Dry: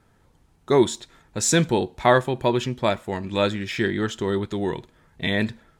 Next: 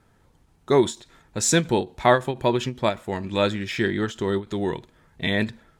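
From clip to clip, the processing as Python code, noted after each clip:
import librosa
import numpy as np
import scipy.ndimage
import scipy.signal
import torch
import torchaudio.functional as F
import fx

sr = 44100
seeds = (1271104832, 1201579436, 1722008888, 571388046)

y = fx.end_taper(x, sr, db_per_s=260.0)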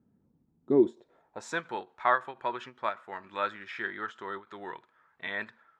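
y = fx.filter_sweep_bandpass(x, sr, from_hz=220.0, to_hz=1300.0, start_s=0.59, end_s=1.63, q=2.5)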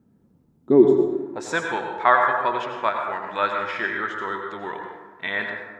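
y = fx.rev_plate(x, sr, seeds[0], rt60_s=1.3, hf_ratio=0.45, predelay_ms=75, drr_db=2.5)
y = F.gain(torch.from_numpy(y), 8.0).numpy()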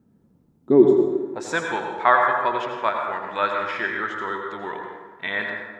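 y = fx.echo_feedback(x, sr, ms=84, feedback_pct=55, wet_db=-14)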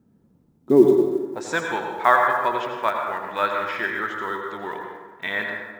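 y = fx.block_float(x, sr, bits=7)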